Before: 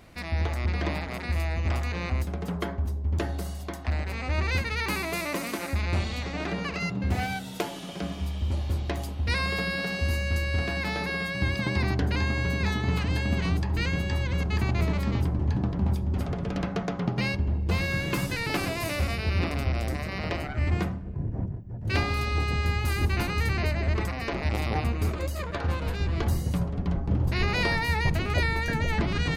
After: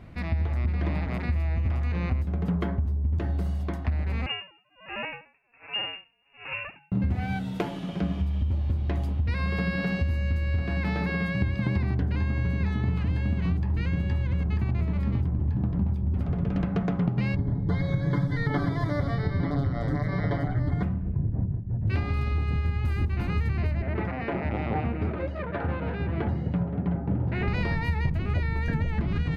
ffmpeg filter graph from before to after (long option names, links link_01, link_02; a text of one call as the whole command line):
ffmpeg -i in.wav -filter_complex "[0:a]asettb=1/sr,asplit=3[link_01][link_02][link_03];[link_01]atrim=end=4.264[link_04];[link_02]atrim=start=4.26:end=6.92,asetpts=PTS-STARTPTS,afade=type=in:duration=0.004:curve=qsin,afade=type=out:start_time=2.656:duration=0.004:curve=qsin,lowpass=frequency=2500:width_type=q:width=0.5098,lowpass=frequency=2500:width_type=q:width=0.6013,lowpass=frequency=2500:width_type=q:width=0.9,lowpass=frequency=2500:width_type=q:width=2.563,afreqshift=-2900,aeval=exprs='val(0)*pow(10,-37*(0.5-0.5*cos(2*PI*1.3*n/s))/20)':channel_layout=same[link_05];[link_03]atrim=start=6.916[link_06];[link_04][link_05]acrossfade=duration=0.004:curve1=hsin:curve2=qsin[link_07];[link_07][link_06]acrossfade=duration=0.004:curve1=qsin:curve2=hsin,asettb=1/sr,asplit=3[link_08][link_09][link_10];[link_08]atrim=end=17.364[link_11];[link_09]atrim=start=17.36:end=20.83,asetpts=PTS-STARTPTS,afade=type=in:duration=0.004:curve=qsin,afade=type=out:start_time=3.466:duration=0.004:curve=qsin,acrossover=split=5300[link_12][link_13];[link_13]acompressor=threshold=-56dB:ratio=4:attack=1:release=60[link_14];[link_12][link_14]amix=inputs=2:normalize=0,asuperstop=centerf=2600:order=8:qfactor=2.7,aecho=1:1:7:0.89,atrim=end_sample=153027[link_15];[link_10]atrim=start=20.826[link_16];[link_11][link_15]acrossfade=duration=0.004:curve1=hsin:curve2=qsin[link_17];[link_17][link_16]acrossfade=duration=0.004:curve1=qsin:curve2=hsin,asettb=1/sr,asplit=3[link_18][link_19][link_20];[link_18]atrim=end=23.824[link_21];[link_19]atrim=start=23.82:end=27.48,asetpts=PTS-STARTPTS,afade=type=in:duration=0.004:curve=qsin,afade=type=out:start_time=3.656:duration=0.004:curve=qsin,highpass=100,lowpass=3900,bandreject=frequency=1100:width=6.2,asplit=2[link_22][link_23];[link_23]highpass=frequency=720:poles=1,volume=11dB,asoftclip=type=tanh:threshold=-16dB[link_24];[link_22][link_24]amix=inputs=2:normalize=0,lowpass=frequency=1200:poles=1,volume=-6dB[link_25];[link_20]atrim=start=27.476[link_26];[link_21][link_25]acrossfade=duration=0.004:curve1=hsin:curve2=qsin[link_27];[link_27][link_26]acrossfade=duration=0.004:curve1=qsin:curve2=hsin,bass=frequency=250:gain=12,treble=frequency=4000:gain=-14,acompressor=threshold=-20dB:ratio=6,lowshelf=frequency=100:gain=-5.5" out.wav